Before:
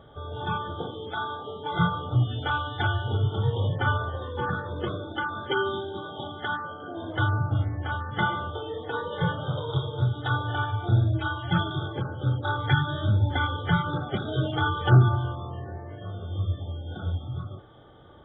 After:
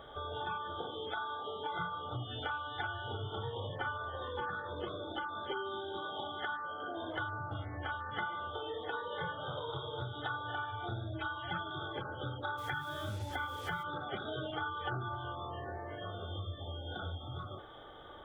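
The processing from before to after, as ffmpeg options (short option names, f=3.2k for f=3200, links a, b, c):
-filter_complex "[0:a]asettb=1/sr,asplit=3[a][b][c];[a]atrim=end=4.754[d];[b]atrim=start=4.75:end=5.72,asetpts=PTS-STARTPTS,afade=t=in:d=0.004:c=qsin,afade=t=out:st=0.966:d=0.004:c=qsin,equalizer=f=1.7k:w=1.5:g=-7[e];[c]atrim=start=5.716[f];[d][e]acrossfade=d=0.004:c1=hsin:c2=qsin[g];[g][f]acrossfade=d=0.004:c1=qsin:c2=hsin,asplit=3[h][i][j];[h]afade=t=out:st=12.57:d=0.02[k];[i]acrusher=bits=6:mix=0:aa=0.5,afade=t=in:st=12.57:d=0.02,afade=t=out:st=13.82:d=0.02[l];[j]afade=t=in:st=13.82:d=0.02[m];[k][l][m]amix=inputs=3:normalize=0,acrossover=split=2600[n][o];[o]acompressor=threshold=-46dB:ratio=4:attack=1:release=60[p];[n][p]amix=inputs=2:normalize=0,equalizer=f=130:w=0.44:g=-15,acompressor=threshold=-43dB:ratio=4,volume=5dB"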